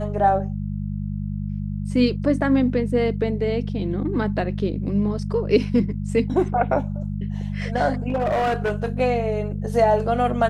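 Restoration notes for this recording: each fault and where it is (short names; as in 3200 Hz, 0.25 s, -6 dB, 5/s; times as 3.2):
hum 50 Hz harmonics 4 -27 dBFS
8.08–8.88 clipped -18 dBFS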